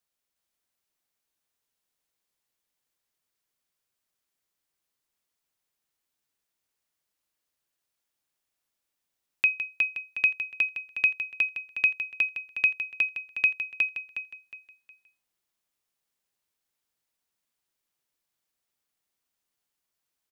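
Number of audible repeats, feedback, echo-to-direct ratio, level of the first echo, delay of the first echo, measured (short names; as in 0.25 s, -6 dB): 4, 33%, -2.5 dB, -3.0 dB, 0.363 s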